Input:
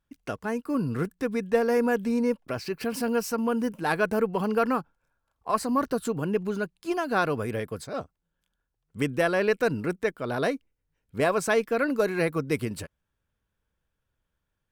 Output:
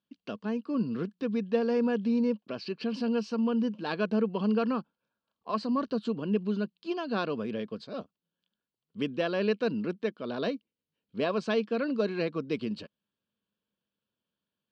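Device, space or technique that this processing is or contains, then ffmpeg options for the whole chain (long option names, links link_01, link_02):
kitchen radio: -af "highpass=200,equalizer=frequency=210:width_type=q:width=4:gain=10,equalizer=frequency=800:width_type=q:width=4:gain=-7,equalizer=frequency=1400:width_type=q:width=4:gain=-5,equalizer=frequency=2000:width_type=q:width=4:gain=-10,equalizer=frequency=3000:width_type=q:width=4:gain=6,equalizer=frequency=4400:width_type=q:width=4:gain=7,lowpass=frequency=4500:width=0.5412,lowpass=frequency=4500:width=1.3066,volume=-4dB"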